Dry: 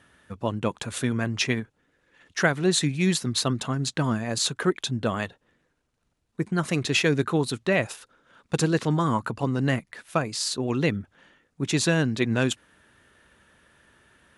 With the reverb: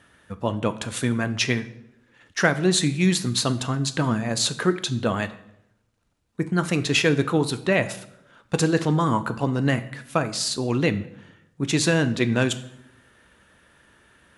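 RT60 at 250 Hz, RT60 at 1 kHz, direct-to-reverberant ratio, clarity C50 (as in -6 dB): 1.0 s, 0.70 s, 10.5 dB, 15.0 dB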